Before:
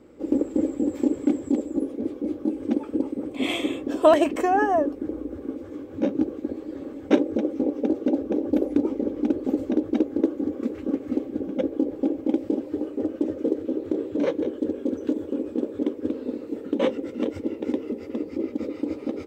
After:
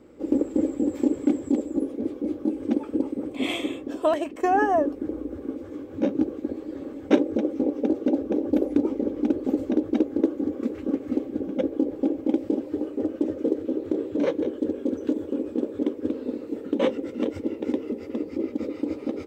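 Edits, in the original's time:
3.27–4.43 s: fade out, to -12 dB

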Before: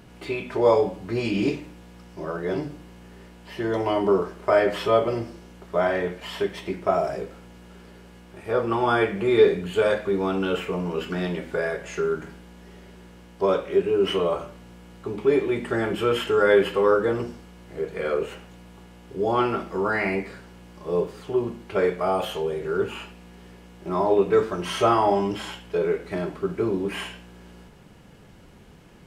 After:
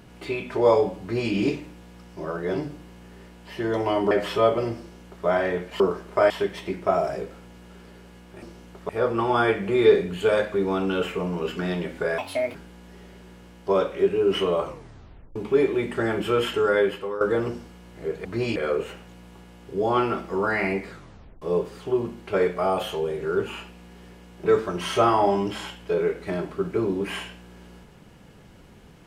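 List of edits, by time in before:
1.01–1.32 s: copy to 17.98 s
4.11–4.61 s: move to 6.30 s
5.29–5.76 s: copy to 8.42 s
11.71–12.28 s: speed 155%
14.37 s: tape stop 0.72 s
16.25–16.94 s: fade out linear, to -15 dB
20.33 s: tape stop 0.51 s
23.87–24.29 s: delete

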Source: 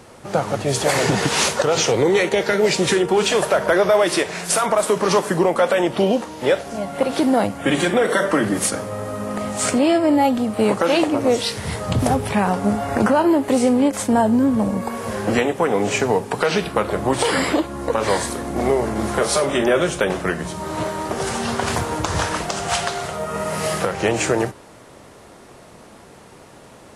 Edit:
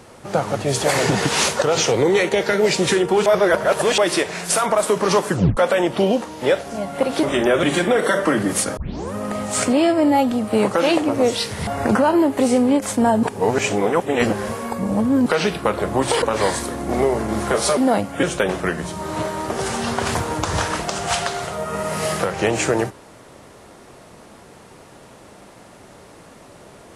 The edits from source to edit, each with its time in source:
3.26–3.98 s: reverse
5.31 s: tape stop 0.26 s
7.23–7.69 s: swap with 19.44–19.84 s
8.83 s: tape start 0.37 s
11.73–12.78 s: delete
14.34–16.37 s: reverse
17.33–17.89 s: delete

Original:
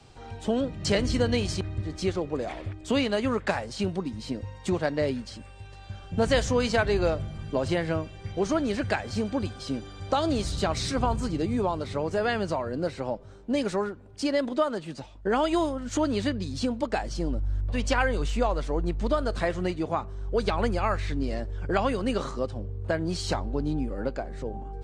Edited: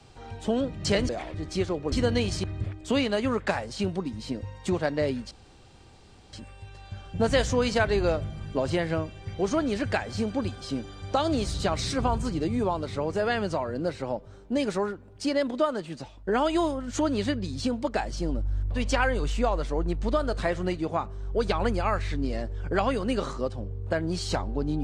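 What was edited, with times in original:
1.09–1.81 s: swap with 2.39–2.64 s
5.31 s: insert room tone 1.02 s

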